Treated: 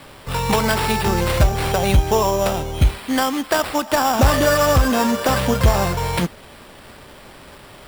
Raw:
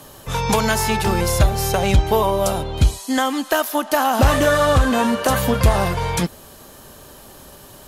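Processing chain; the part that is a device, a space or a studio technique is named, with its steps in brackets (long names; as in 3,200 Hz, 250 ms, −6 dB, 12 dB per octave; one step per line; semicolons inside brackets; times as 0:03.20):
early 8-bit sampler (sample-rate reduction 6,400 Hz, jitter 0%; bit reduction 8 bits)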